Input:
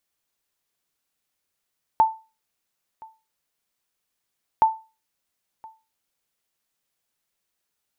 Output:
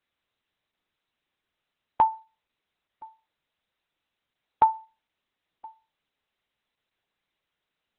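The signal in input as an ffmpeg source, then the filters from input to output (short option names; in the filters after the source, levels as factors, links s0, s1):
-f lavfi -i "aevalsrc='0.355*(sin(2*PI*886*mod(t,2.62))*exp(-6.91*mod(t,2.62)/0.3)+0.0531*sin(2*PI*886*max(mod(t,2.62)-1.02,0))*exp(-6.91*max(mod(t,2.62)-1.02,0)/0.3))':d=5.24:s=44100"
-ar 48000 -c:a libopus -b:a 6k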